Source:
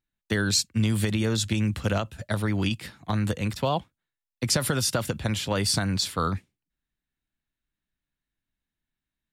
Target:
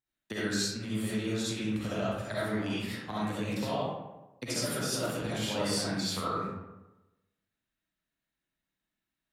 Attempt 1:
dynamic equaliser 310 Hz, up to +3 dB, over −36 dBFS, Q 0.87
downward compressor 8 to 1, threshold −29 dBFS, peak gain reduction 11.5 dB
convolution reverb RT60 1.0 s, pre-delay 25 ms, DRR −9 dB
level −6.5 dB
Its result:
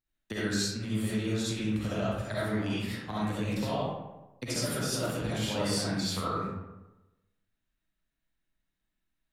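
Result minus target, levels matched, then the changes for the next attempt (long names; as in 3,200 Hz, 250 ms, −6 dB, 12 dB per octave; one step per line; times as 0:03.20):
125 Hz band +2.5 dB
add after downward compressor: high-pass filter 140 Hz 6 dB per octave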